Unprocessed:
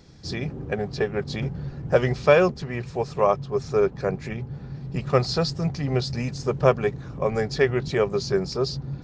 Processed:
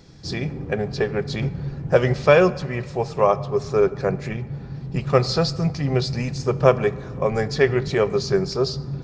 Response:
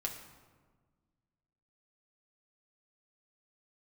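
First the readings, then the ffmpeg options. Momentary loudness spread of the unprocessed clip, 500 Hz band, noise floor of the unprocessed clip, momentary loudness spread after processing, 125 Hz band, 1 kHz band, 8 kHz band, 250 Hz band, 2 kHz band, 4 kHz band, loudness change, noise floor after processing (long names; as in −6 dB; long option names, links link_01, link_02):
11 LU, +3.0 dB, −40 dBFS, 10 LU, +3.5 dB, +2.5 dB, can't be measured, +3.0 dB, +2.5 dB, +2.5 dB, +3.0 dB, −36 dBFS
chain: -filter_complex "[0:a]asplit=2[link_01][link_02];[1:a]atrim=start_sample=2205[link_03];[link_02][link_03]afir=irnorm=-1:irlink=0,volume=-7.5dB[link_04];[link_01][link_04]amix=inputs=2:normalize=0"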